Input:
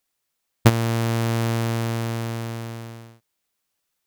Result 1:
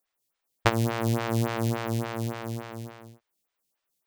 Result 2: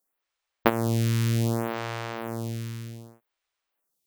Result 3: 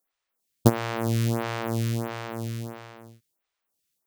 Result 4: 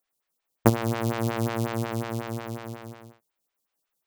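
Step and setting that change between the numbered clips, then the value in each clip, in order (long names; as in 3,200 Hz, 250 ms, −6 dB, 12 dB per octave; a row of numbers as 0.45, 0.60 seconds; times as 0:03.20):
phaser with staggered stages, speed: 3.5, 0.65, 1.5, 5.5 Hertz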